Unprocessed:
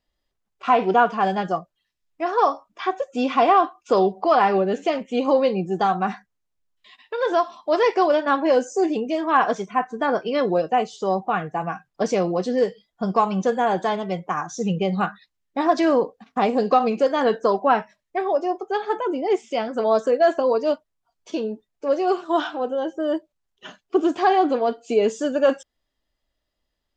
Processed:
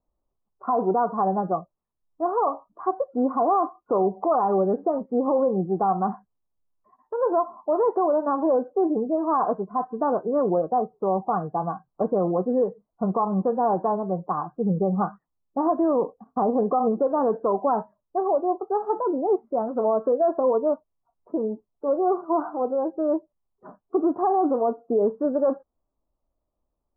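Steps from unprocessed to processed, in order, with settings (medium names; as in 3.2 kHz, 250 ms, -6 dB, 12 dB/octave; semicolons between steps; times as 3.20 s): steep low-pass 1.2 kHz 48 dB/octave; peak limiter -14 dBFS, peak gain reduction 7.5 dB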